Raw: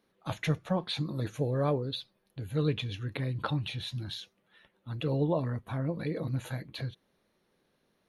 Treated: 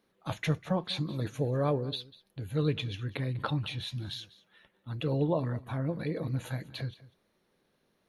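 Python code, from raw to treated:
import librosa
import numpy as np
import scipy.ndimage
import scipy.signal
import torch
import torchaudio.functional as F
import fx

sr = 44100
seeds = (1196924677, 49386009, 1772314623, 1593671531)

y = x + 10.0 ** (-19.5 / 20.0) * np.pad(x, (int(196 * sr / 1000.0), 0))[:len(x)]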